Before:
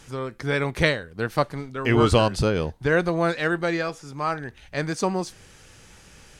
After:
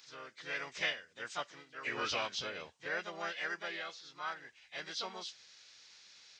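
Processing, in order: nonlinear frequency compression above 1600 Hz 1.5:1; differentiator; harmoniser +3 st -3 dB

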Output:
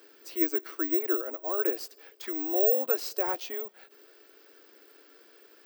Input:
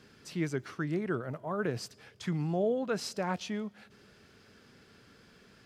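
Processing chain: Chebyshev high-pass 310 Hz, order 5; low shelf 400 Hz +9 dB; careless resampling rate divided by 2×, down filtered, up zero stuff

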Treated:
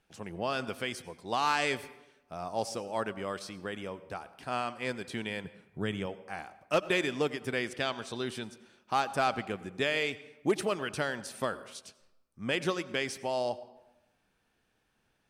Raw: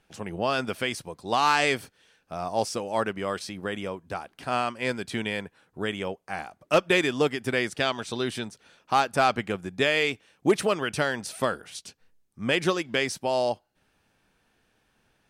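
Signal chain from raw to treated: 5.44–6.06 bell 130 Hz +10 dB 1.7 oct; on a send: reverb RT60 1.0 s, pre-delay 82 ms, DRR 16 dB; on the sum: gain -6.5 dB

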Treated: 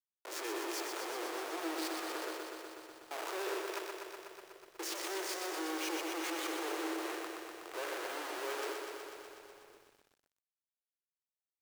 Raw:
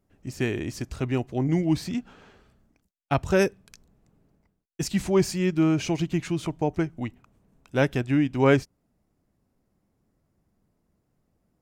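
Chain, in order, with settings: spectral trails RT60 0.32 s; transient shaper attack -8 dB, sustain +1 dB; in parallel at -0.5 dB: limiter -18 dBFS, peak gain reduction 10 dB; on the sum: compressor 2.5:1, threshold -26 dBFS, peak gain reduction 9.5 dB; Schmitt trigger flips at -41 dBFS; rippled Chebyshev high-pass 320 Hz, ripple 3 dB; outdoor echo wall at 180 m, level -21 dB; lo-fi delay 0.123 s, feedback 80%, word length 10-bit, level -5 dB; gain -6 dB

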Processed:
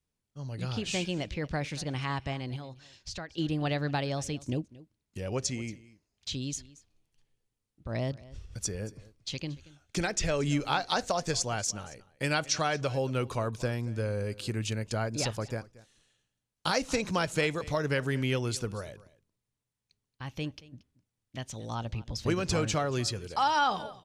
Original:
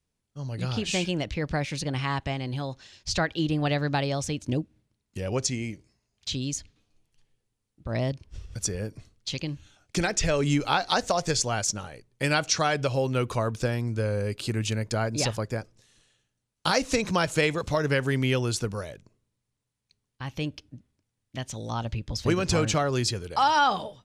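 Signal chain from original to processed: 2.56–3.38 compressor 2.5:1, threshold -37 dBFS, peak gain reduction 11.5 dB; echo 0.229 s -20 dB; gain -4.5 dB

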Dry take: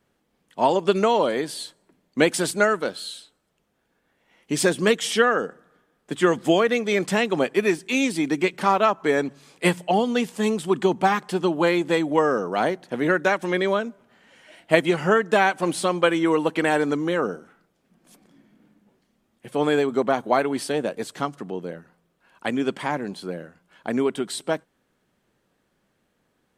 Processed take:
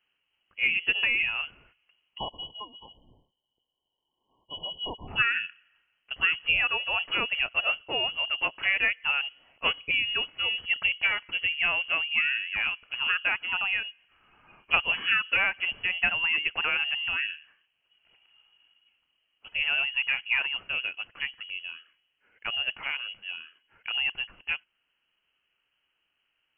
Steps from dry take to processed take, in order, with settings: spectral delete 2.18–5.08, 200–2000 Hz; inverted band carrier 3100 Hz; gain -6.5 dB

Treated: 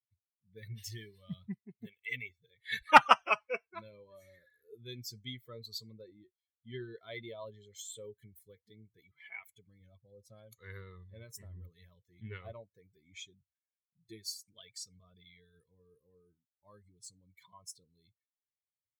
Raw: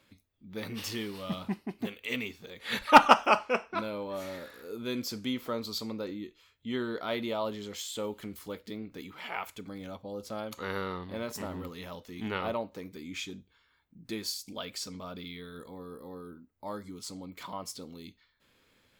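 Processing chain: per-bin expansion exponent 2; graphic EQ 125/250/1000/2000/8000 Hz +11/-6/+3/+9/+5 dB; gain -5 dB

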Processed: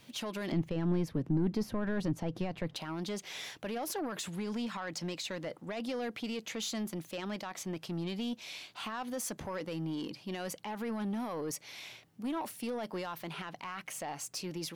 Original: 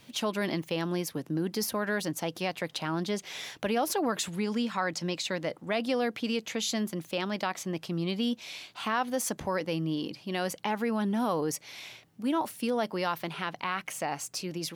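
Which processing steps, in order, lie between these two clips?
limiter -23.5 dBFS, peak gain reduction 7.5 dB; soft clip -27.5 dBFS, distortion -16 dB; 0.52–2.76 RIAA curve playback; gain -2.5 dB

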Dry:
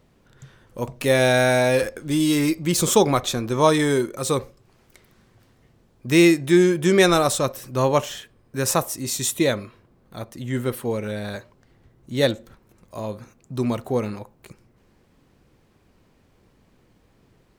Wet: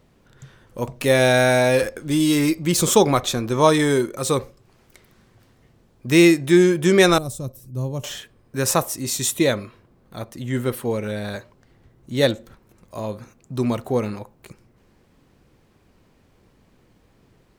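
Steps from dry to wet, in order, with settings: 7.18–8.04 EQ curve 120 Hz 0 dB, 1800 Hz -27 dB, 11000 Hz -8 dB; gain +1.5 dB

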